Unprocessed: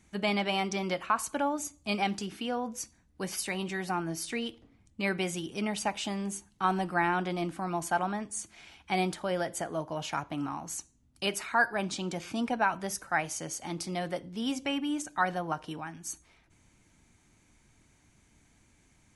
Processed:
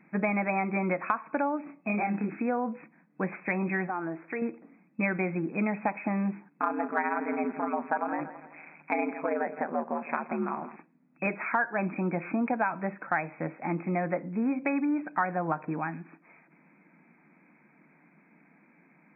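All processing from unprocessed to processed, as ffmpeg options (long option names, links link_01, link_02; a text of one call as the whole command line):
ffmpeg -i in.wav -filter_complex "[0:a]asettb=1/sr,asplit=3[link_01][link_02][link_03];[link_01]atrim=end=1.654[link_04];[link_02]atrim=start=1.65:end=2.29,asetpts=PTS-STARTPTS,afade=type=in:duration=0.004:curve=qsin,afade=type=out:start_time=0.636:duration=0.004:curve=qsin,acompressor=threshold=-32dB:ratio=10:attack=3.2:release=140:knee=1:detection=peak,asplit=2[link_05][link_06];[link_06]adelay=29,volume=-2dB[link_07];[link_05][link_07]amix=inputs=2:normalize=0,atrim=end_sample=28224[link_08];[link_03]atrim=start=2.286[link_09];[link_04][link_08]acrossfade=duration=0.004:curve1=hsin:curve2=qsin[link_10];[link_10][link_09]acrossfade=duration=0.004:curve1=qsin:curve2=hsin,asettb=1/sr,asplit=3[link_11][link_12][link_13];[link_11]atrim=end=3.874[link_14];[link_12]atrim=start=3.87:end=4.42,asetpts=PTS-STARTPTS,afade=type=in:duration=0.004:curve=qsin,afade=type=out:start_time=0.546:duration=0.004:curve=qsin,lowpass=frequency=2000:width=0.5412,lowpass=frequency=2000:width=1.3066,equalizer=frequency=190:width=1.8:gain=-12.5,acompressor=threshold=-36dB:ratio=4:attack=3.2:release=140:knee=1:detection=peak[link_15];[link_13]atrim=start=4.416[link_16];[link_14][link_15]acrossfade=duration=0.004:curve1=hsin:curve2=qsin[link_17];[link_17][link_16]acrossfade=duration=0.004:curve1=qsin:curve2=hsin,asettb=1/sr,asplit=3[link_18][link_19][link_20];[link_18]atrim=end=6.484[link_21];[link_19]atrim=start=6.48:end=10.76,asetpts=PTS-STARTPTS,afade=type=in:duration=0.004:curve=qsin,afade=type=out:start_time=4.276:duration=0.004:curve=qsin,aeval=exprs='val(0)*sin(2*PI*79*n/s)':channel_layout=same,aecho=1:1:165|330|495|660:0.168|0.0705|0.0296|0.0124,atrim=end_sample=188748[link_22];[link_20]atrim=start=10.756[link_23];[link_21][link_22]acrossfade=duration=0.004:curve1=hsin:curve2=qsin[link_24];[link_24][link_23]acrossfade=duration=0.004:curve1=qsin:curve2=hsin,afftfilt=real='re*between(b*sr/4096,140,2600)':imag='im*between(b*sr/4096,140,2600)':win_size=4096:overlap=0.75,bandreject=frequency=400:width=12,acompressor=threshold=-32dB:ratio=5,volume=7.5dB" out.wav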